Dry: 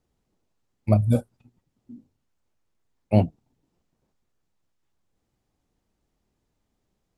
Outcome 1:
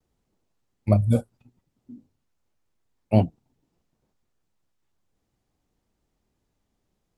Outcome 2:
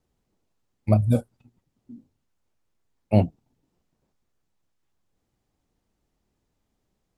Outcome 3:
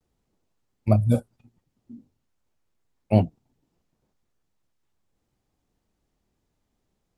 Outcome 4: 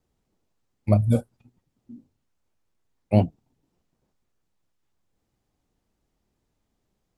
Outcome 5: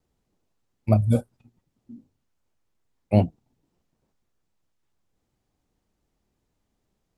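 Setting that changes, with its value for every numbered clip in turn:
vibrato, rate: 0.71, 6.5, 0.45, 4.1, 2.5 Hz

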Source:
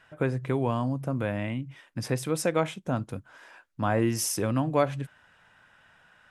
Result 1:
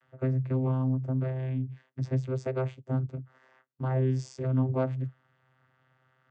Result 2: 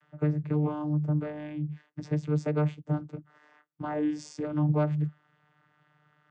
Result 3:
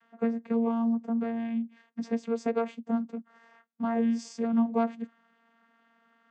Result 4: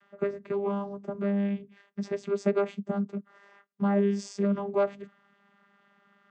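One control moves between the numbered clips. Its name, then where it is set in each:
vocoder, frequency: 130, 150, 230, 200 Hz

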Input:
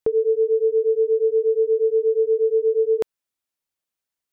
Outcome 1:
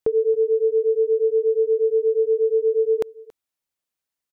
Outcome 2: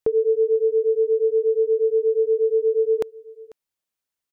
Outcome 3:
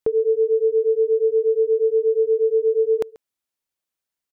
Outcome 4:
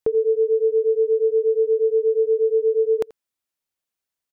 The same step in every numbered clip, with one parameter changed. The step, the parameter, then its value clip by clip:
echo, time: 278, 494, 136, 84 ms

